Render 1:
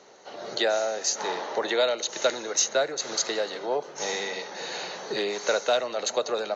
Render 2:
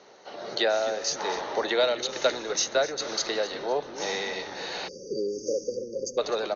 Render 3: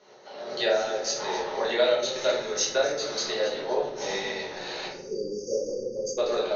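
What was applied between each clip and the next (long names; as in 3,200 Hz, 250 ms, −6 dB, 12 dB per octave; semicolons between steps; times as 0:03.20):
Butterworth low-pass 6,100 Hz 48 dB per octave; echo with shifted repeats 254 ms, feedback 43%, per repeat −99 Hz, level −15 dB; time-frequency box erased 0:04.88–0:06.18, 570–4,600 Hz
shaped tremolo saw up 7.2 Hz, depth 40%; rectangular room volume 94 cubic metres, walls mixed, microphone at 1.4 metres; level −4.5 dB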